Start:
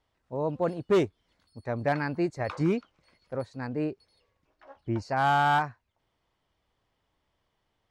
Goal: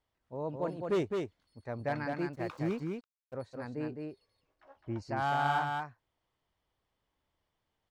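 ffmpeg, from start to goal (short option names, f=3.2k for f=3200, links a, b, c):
-filter_complex "[0:a]asettb=1/sr,asplit=3[a][b][c];[a]atrim=end=2.124[d];[b]atrim=start=2.12:end=3.34,asetpts=PTS-STARTPTS,afade=t=in:d=0.004:c=qsin,afade=t=out:st=1.216:d=0.004:c=qsin,aeval=exprs='sgn(val(0))*max(abs(val(0))-0.00355,0)':c=same[e];[c]atrim=start=3.336[f];[d][e]acrossfade=d=0.004:c1=hsin:c2=qsin[g];[g][f]acrossfade=d=0.004:c1=qsin:c2=hsin,aecho=1:1:210:0.631,volume=-7.5dB"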